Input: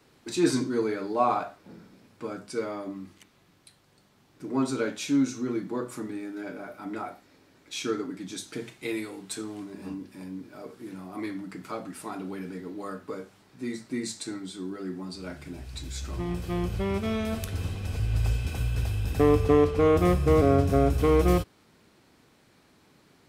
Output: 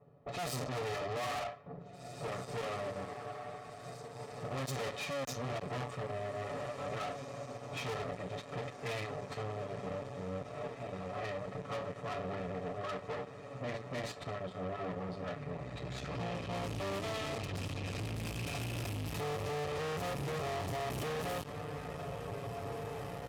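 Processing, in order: comb filter that takes the minimum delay 1.6 ms; peak limiter -21.5 dBFS, peak gain reduction 11 dB; level-controlled noise filter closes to 610 Hz, open at -26 dBFS; comb 7 ms, depth 74%; on a send: echo that smears into a reverb 1989 ms, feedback 68%, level -15 dB; on the sum: valve stage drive 41 dB, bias 0.65; high-pass 80 Hz; band-stop 1.5 kHz, Q 9.7; trim +5.5 dB

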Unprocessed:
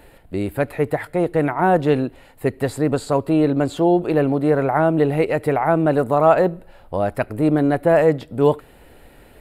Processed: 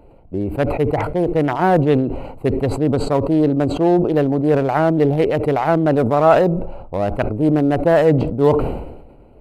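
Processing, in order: local Wiener filter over 25 samples; decay stretcher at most 53 dB/s; trim +1.5 dB

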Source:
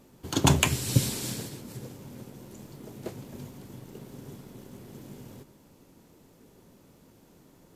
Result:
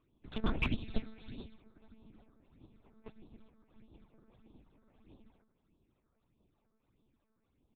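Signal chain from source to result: comb filter that takes the minimum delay 0.82 ms; hum notches 50/100/150/200/250 Hz; on a send: feedback delay 150 ms, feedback 54%, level -21 dB; on the sum: phase shifter stages 8, 1.6 Hz, lowest notch 100–1900 Hz; monotone LPC vocoder at 8 kHz 220 Hz; peaking EQ 290 Hz +3.5 dB 0.77 oct; in parallel at -12 dB: saturation -32.5 dBFS, distortion -4 dB; on the sum: dynamic bell 1.1 kHz, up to -6 dB, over -57 dBFS, Q 2.4; upward expansion 1.5:1, over -50 dBFS; trim -3.5 dB

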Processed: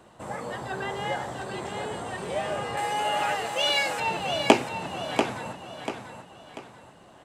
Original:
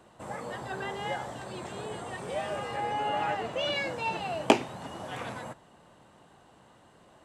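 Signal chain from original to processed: 2.77–4.00 s: RIAA curve recording; feedback delay 690 ms, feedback 37%, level -7 dB; trim +3.5 dB

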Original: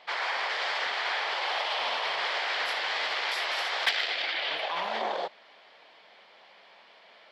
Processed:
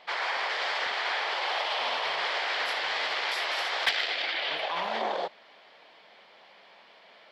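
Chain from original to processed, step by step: bass shelf 320 Hz +4.5 dB

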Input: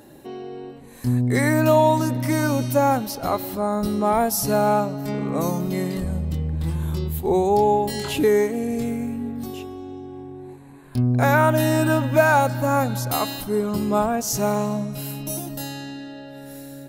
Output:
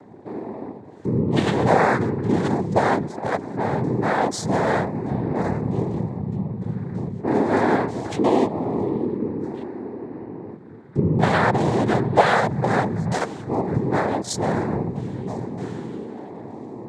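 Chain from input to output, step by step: local Wiener filter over 25 samples; in parallel at +1 dB: compression, threshold -26 dBFS, peak gain reduction 14 dB; on the sum: noise-vocoded speech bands 6; trim -2.5 dB

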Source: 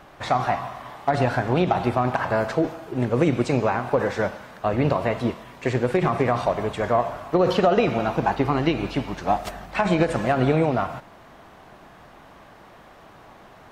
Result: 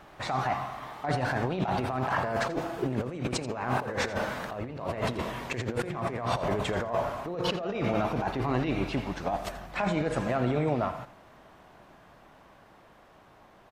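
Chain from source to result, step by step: Doppler pass-by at 4.63 s, 12 m/s, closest 16 m; compressor with a negative ratio -33 dBFS, ratio -1; delay 84 ms -15.5 dB; trim +2.5 dB

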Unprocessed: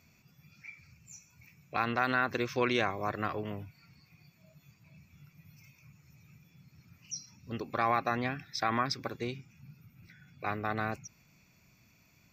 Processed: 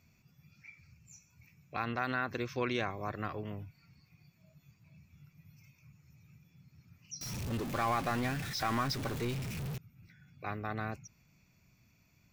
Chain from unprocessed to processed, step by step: 7.21–9.78 s: jump at every zero crossing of -31 dBFS; bass shelf 150 Hz +7.5 dB; trim -5.5 dB

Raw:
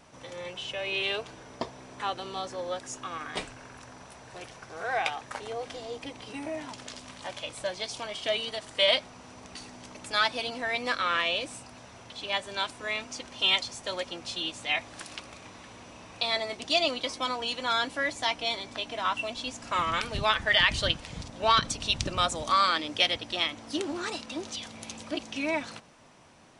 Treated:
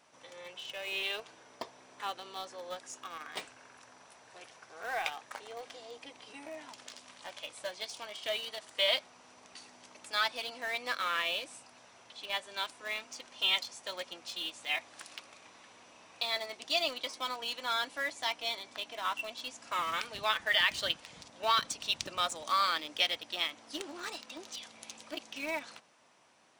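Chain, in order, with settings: high-pass 580 Hz 6 dB/octave; in parallel at -12 dB: bit crusher 5-bit; on the sum: trim -6.5 dB

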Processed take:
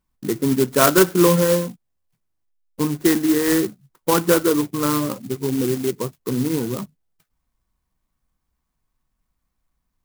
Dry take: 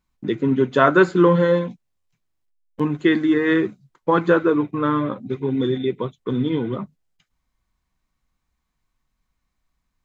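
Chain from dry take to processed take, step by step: sampling jitter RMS 0.095 ms

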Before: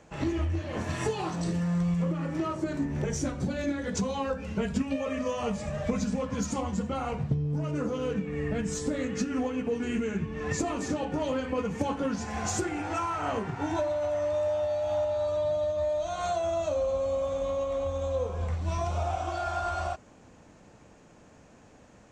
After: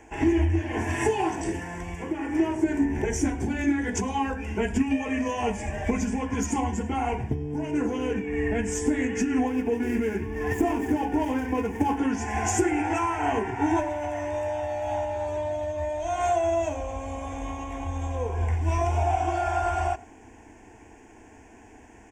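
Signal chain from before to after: 9.47–11.98 s: median filter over 15 samples; static phaser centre 830 Hz, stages 8; delay 107 ms -23 dB; trim +8.5 dB

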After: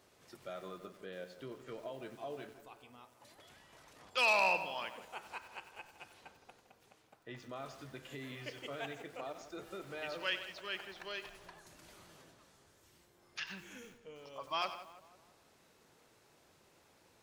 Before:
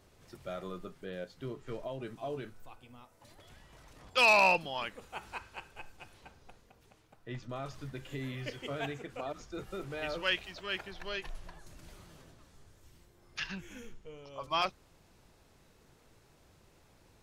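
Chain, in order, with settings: high-pass 330 Hz 6 dB/octave; in parallel at -1 dB: compression, threshold -47 dBFS, peak gain reduction 23.5 dB; on the sum: filtered feedback delay 165 ms, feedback 52%, low-pass 2 kHz, level -13 dB; bit-crushed delay 93 ms, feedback 35%, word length 8-bit, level -12 dB; trim -6 dB

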